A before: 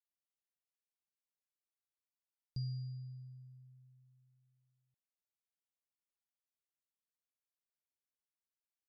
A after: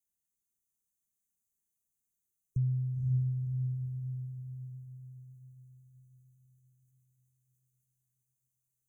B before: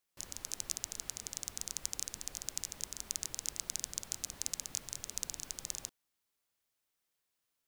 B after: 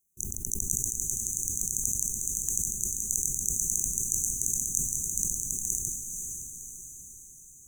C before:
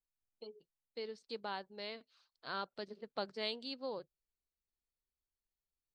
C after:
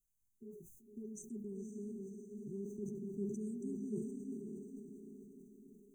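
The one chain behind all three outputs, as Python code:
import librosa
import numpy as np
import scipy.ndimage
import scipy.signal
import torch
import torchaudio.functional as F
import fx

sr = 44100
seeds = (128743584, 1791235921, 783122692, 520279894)

p1 = fx.peak_eq(x, sr, hz=310.0, db=-14.5, octaves=0.31)
p2 = 10.0 ** (-20.5 / 20.0) * np.tanh(p1 / 10.0 ** (-20.5 / 20.0))
p3 = p1 + (p2 * 10.0 ** (-10.5 / 20.0))
p4 = fx.brickwall_bandstop(p3, sr, low_hz=410.0, high_hz=5900.0)
p5 = p4 + fx.echo_diffused(p4, sr, ms=522, feedback_pct=51, wet_db=-3.0, dry=0)
p6 = fx.sustainer(p5, sr, db_per_s=46.0)
y = p6 * 10.0 ** (7.5 / 20.0)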